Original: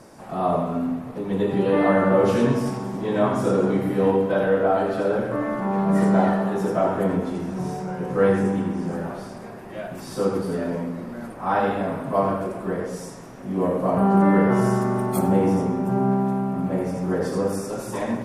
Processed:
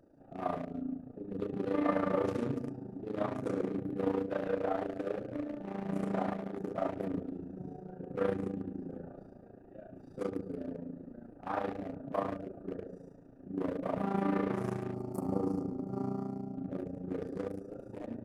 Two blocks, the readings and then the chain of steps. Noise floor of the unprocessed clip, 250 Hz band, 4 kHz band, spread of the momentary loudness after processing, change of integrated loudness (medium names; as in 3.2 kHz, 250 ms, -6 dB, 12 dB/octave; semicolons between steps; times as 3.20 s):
-38 dBFS, -13.5 dB, -16.0 dB, 14 LU, -14.0 dB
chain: local Wiener filter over 41 samples; time-frequency box 14.94–16.57 s, 1.4–4.2 kHz -14 dB; peaking EQ 210 Hz -6 dB 1.4 oct; AM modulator 28 Hz, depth 60%; small resonant body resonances 280/1200 Hz, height 10 dB, ringing for 90 ms; trim -8 dB